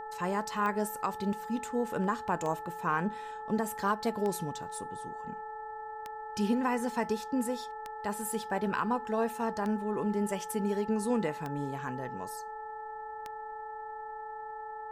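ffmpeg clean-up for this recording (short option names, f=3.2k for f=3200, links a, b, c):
-af "adeclick=t=4,bandreject=f=440:t=h:w=4,bandreject=f=880:t=h:w=4,bandreject=f=1.32k:t=h:w=4,bandreject=f=1.76k:t=h:w=4,bandreject=f=850:w=30,agate=range=-21dB:threshold=-34dB"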